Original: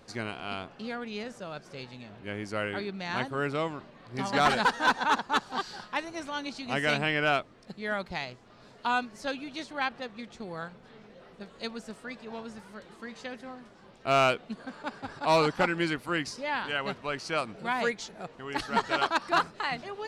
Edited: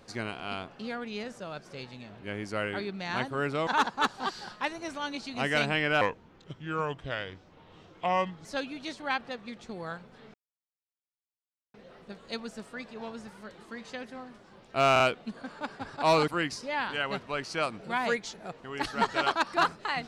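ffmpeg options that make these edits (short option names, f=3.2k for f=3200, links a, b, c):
-filter_complex "[0:a]asplit=8[a][b][c][d][e][f][g][h];[a]atrim=end=3.672[i];[b]atrim=start=4.988:end=7.334[j];[c]atrim=start=7.33:end=9.16,asetpts=PTS-STARTPTS,asetrate=33075,aresample=44100[k];[d]atrim=start=9.156:end=11.05,asetpts=PTS-STARTPTS,afade=t=out:st=1.89:d=0.004:c=hsin,apad=pad_dur=1.4[l];[e]atrim=start=11.05:end=14.272,asetpts=PTS-STARTPTS,afade=t=in:d=0.004:c=hsin[m];[f]atrim=start=14.228:end=14.272[n];[g]atrim=start=14.228:end=15.512[o];[h]atrim=start=16.028[p];[i][j]acrossfade=d=0.004:c1=hsin:c2=hsin[q];[q][k]acrossfade=d=0.004:c1=hsin:c2=hsin[r];[l][m]concat=n=2:v=0:a=1[s];[r][s]acrossfade=d=0.004:c1=hsin:c2=hsin[t];[t][n]acrossfade=d=0.004:c1=hsin:c2=hsin[u];[u][o]acrossfade=d=0.004:c1=hsin:c2=hsin[v];[v][p]acrossfade=d=0.004:c1=hsin:c2=hsin"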